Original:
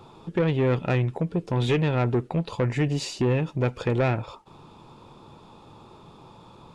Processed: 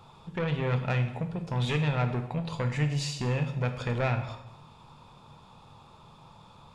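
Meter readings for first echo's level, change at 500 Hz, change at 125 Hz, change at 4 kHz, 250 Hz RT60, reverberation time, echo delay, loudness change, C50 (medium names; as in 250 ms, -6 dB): no echo, -8.0 dB, -3.0 dB, -1.5 dB, 1.0 s, 0.90 s, no echo, -4.5 dB, 9.5 dB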